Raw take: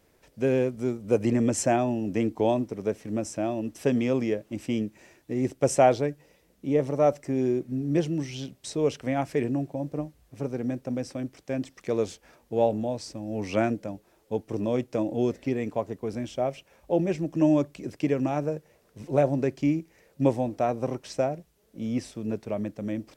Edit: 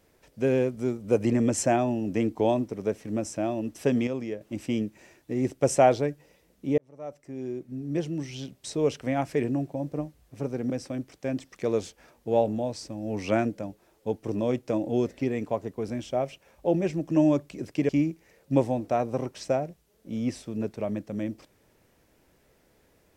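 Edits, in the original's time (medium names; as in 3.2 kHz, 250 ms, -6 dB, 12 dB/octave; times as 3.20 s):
4.07–4.41 s: gain -6.5 dB
6.78–8.73 s: fade in
10.70–10.95 s: delete
18.14–19.58 s: delete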